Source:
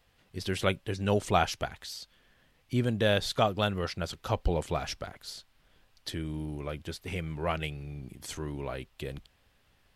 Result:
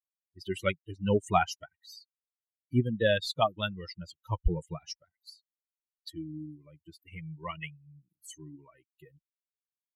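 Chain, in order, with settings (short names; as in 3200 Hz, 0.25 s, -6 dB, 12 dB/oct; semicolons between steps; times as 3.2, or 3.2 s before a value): per-bin expansion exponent 3; high shelf 7200 Hz -7 dB; gain +5 dB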